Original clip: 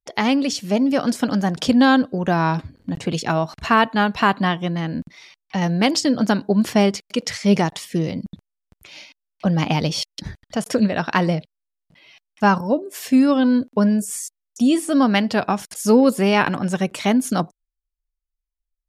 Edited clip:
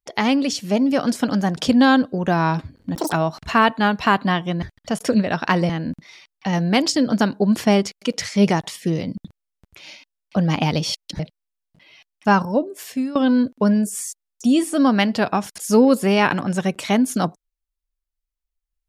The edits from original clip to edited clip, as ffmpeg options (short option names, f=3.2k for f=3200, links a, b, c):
-filter_complex "[0:a]asplit=7[a][b][c][d][e][f][g];[a]atrim=end=2.954[h];[b]atrim=start=2.95:end=3.28,asetpts=PTS-STARTPTS,asetrate=83790,aresample=44100,atrim=end_sample=7659,asetpts=PTS-STARTPTS[i];[c]atrim=start=3.276:end=4.782[j];[d]atrim=start=10.278:end=11.352[k];[e]atrim=start=4.778:end=10.282[l];[f]atrim=start=11.348:end=13.31,asetpts=PTS-STARTPTS,afade=t=out:st=1.472:d=0.49:silence=0.11885[m];[g]atrim=start=13.31,asetpts=PTS-STARTPTS,afade=t=in:d=0.004:c=hsin:silence=0.11885[n];[h][i]acrossfade=d=0.004:c1=hsin:c2=hsin[o];[o][j]acrossfade=d=0.004:c1=hsin:c2=hsin[p];[p][k]acrossfade=d=0.004:c1=hsin:c2=hsin[q];[q][l]acrossfade=d=0.004:c1=hsin:c2=hsin[r];[m][n]concat=n=2:v=0:a=1[s];[r][s]acrossfade=d=0.004:c1=hsin:c2=hsin"